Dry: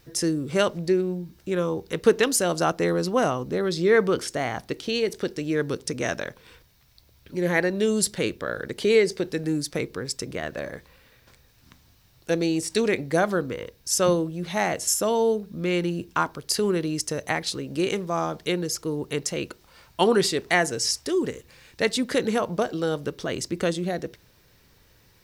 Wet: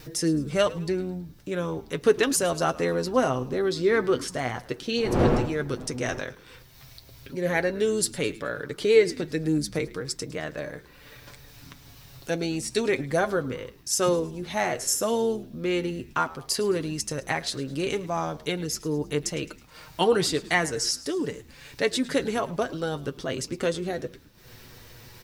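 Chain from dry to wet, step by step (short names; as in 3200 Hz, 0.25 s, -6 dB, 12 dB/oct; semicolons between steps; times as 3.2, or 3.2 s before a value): 4.96–6.19 wind noise 430 Hz -32 dBFS; upward compressor, threshold -33 dBFS; expander -47 dBFS; flange 0.1 Hz, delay 6.4 ms, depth 1.9 ms, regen +34%; on a send: frequency-shifting echo 0.107 s, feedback 48%, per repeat -100 Hz, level -19 dB; on the sum: gain +2 dB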